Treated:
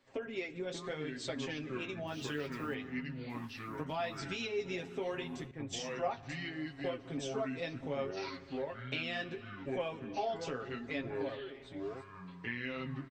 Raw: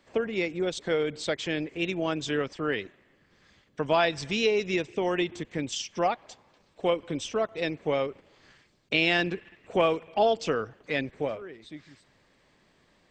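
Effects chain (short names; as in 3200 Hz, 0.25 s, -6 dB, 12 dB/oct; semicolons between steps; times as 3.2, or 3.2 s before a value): 2.07–2.74 level-crossing sampler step -47 dBFS; echoes that change speed 0.531 s, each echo -5 st, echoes 3, each echo -6 dB; reverb RT60 2.7 s, pre-delay 4 ms, DRR 18 dB; compressor 3:1, threshold -28 dBFS, peak gain reduction 8 dB; flange 0.72 Hz, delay 8.4 ms, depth 9.5 ms, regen -33%; comb 7.4 ms; 5.51–6.23 three-band expander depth 100%; gain -5 dB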